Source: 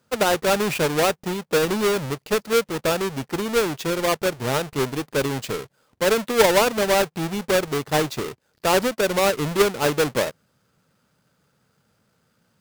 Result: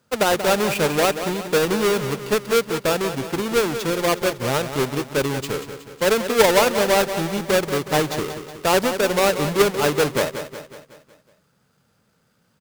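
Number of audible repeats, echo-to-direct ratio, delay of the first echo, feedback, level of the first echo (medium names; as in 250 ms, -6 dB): 5, -8.5 dB, 184 ms, 52%, -10.0 dB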